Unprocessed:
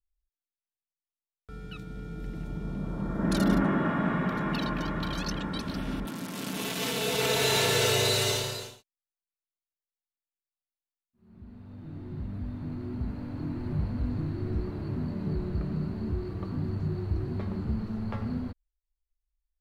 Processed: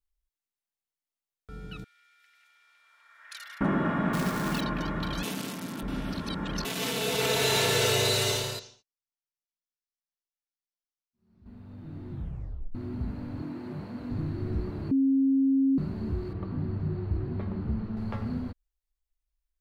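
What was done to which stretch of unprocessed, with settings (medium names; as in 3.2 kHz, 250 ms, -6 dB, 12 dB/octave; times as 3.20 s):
1.84–3.61 s: ladder high-pass 1.6 kHz, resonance 40%
4.13–4.61 s: companded quantiser 4-bit
5.23–6.65 s: reverse
7.36–8.09 s: short-mantissa float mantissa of 6-bit
8.59–11.46 s: four-pole ladder low-pass 6.3 kHz, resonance 60%
12.11 s: tape stop 0.64 s
13.42–14.11 s: high-pass 220 Hz
14.91–15.78 s: bleep 270 Hz -20 dBFS
16.33–17.97 s: distance through air 200 m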